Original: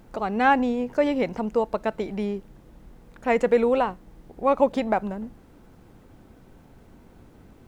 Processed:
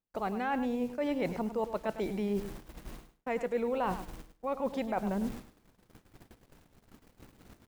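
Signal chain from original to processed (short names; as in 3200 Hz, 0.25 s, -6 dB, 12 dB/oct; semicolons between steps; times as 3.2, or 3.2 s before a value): in parallel at -3 dB: limiter -17.5 dBFS, peak gain reduction 10.5 dB; on the sum: bit-crush 8-bit; reverse; compressor 8:1, threshold -30 dBFS, peak gain reduction 18.5 dB; reverse; de-hum 46.86 Hz, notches 2; gate -42 dBFS, range -46 dB; feedback echo 0.103 s, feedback 16%, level -11.5 dB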